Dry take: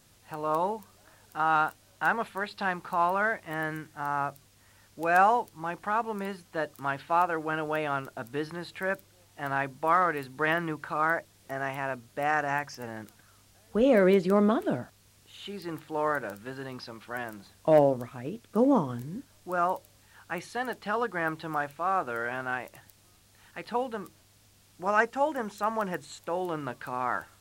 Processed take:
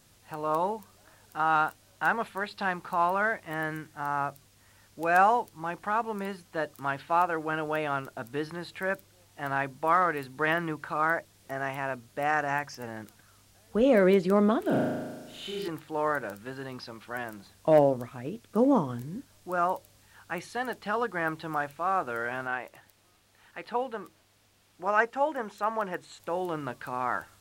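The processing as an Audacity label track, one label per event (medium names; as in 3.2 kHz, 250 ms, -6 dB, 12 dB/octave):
14.620000	15.680000	flutter echo walls apart 6.4 m, dies away in 1.3 s
22.470000	26.200000	tone controls bass -7 dB, treble -6 dB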